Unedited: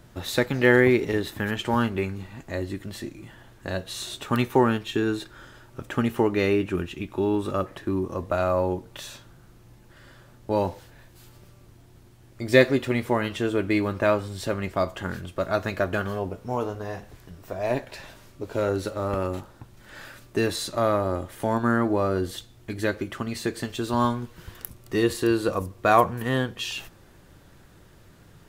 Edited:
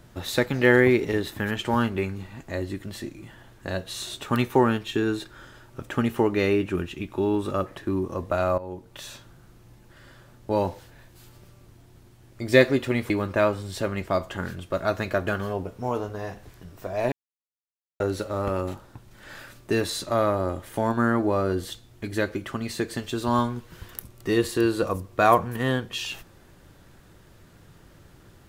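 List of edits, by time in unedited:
8.58–9.11 s: fade in linear, from -17 dB
13.10–13.76 s: delete
17.78–18.66 s: mute

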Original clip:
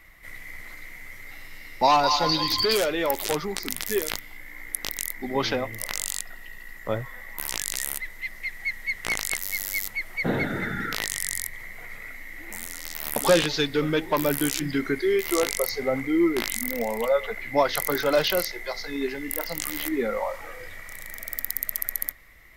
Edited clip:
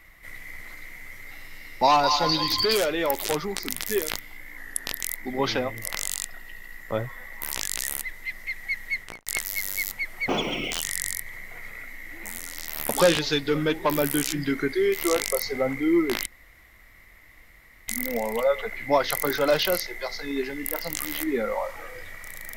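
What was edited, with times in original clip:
4.57–4.98 s: speed 92%
8.91–9.23 s: studio fade out
10.25–11.10 s: speed 156%
16.53 s: insert room tone 1.62 s

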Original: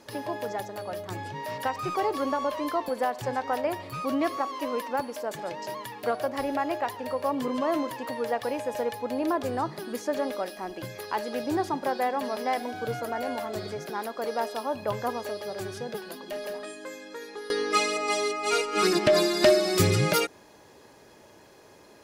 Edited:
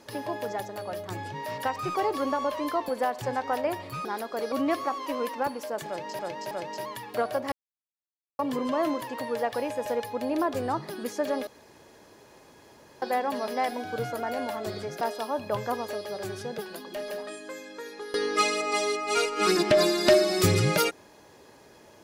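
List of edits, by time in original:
5.40–5.72 s: loop, 3 plays
6.41–7.28 s: mute
10.36–11.91 s: room tone
13.90–14.37 s: move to 4.05 s

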